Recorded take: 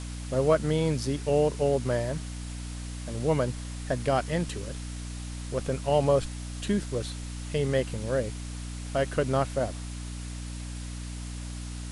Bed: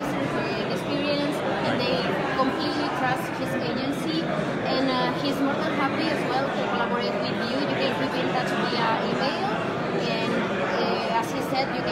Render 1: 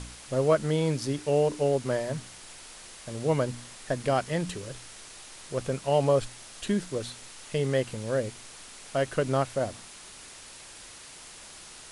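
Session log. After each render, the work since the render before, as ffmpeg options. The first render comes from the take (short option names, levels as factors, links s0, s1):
-af "bandreject=f=60:t=h:w=4,bandreject=f=120:t=h:w=4,bandreject=f=180:t=h:w=4,bandreject=f=240:t=h:w=4,bandreject=f=300:t=h:w=4"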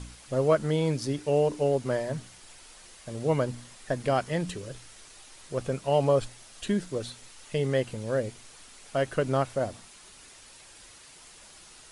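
-af "afftdn=nr=6:nf=-47"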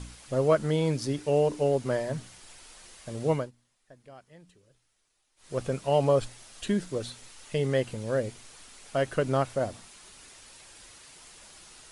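-filter_complex "[0:a]asplit=3[s0][s1][s2];[s0]atrim=end=3.51,asetpts=PTS-STARTPTS,afade=t=out:st=3.31:d=0.2:silence=0.0630957[s3];[s1]atrim=start=3.51:end=5.36,asetpts=PTS-STARTPTS,volume=0.0631[s4];[s2]atrim=start=5.36,asetpts=PTS-STARTPTS,afade=t=in:d=0.2:silence=0.0630957[s5];[s3][s4][s5]concat=n=3:v=0:a=1"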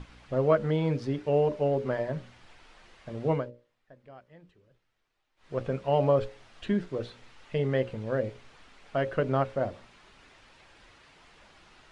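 -af "lowpass=2700,bandreject=f=60:t=h:w=6,bandreject=f=120:t=h:w=6,bandreject=f=180:t=h:w=6,bandreject=f=240:t=h:w=6,bandreject=f=300:t=h:w=6,bandreject=f=360:t=h:w=6,bandreject=f=420:t=h:w=6,bandreject=f=480:t=h:w=6,bandreject=f=540:t=h:w=6,bandreject=f=600:t=h:w=6"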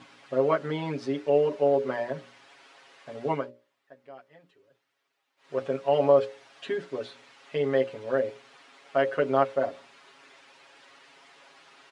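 -af "highpass=310,aecho=1:1:7.3:0.96"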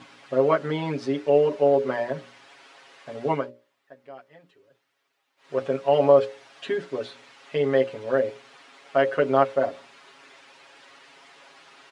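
-af "volume=1.5"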